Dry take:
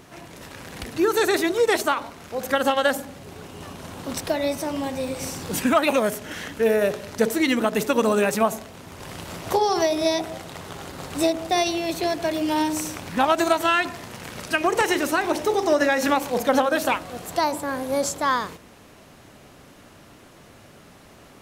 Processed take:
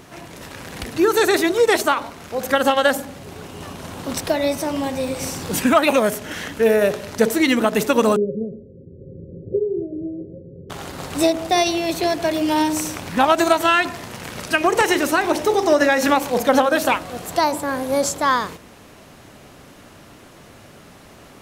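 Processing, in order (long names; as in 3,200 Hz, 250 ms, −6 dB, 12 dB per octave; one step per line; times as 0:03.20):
0:08.16–0:10.70: Chebyshev low-pass with heavy ripple 550 Hz, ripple 6 dB
level +4 dB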